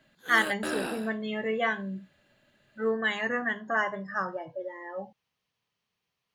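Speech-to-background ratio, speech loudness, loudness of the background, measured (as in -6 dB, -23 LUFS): 5.0 dB, -30.0 LUFS, -35.0 LUFS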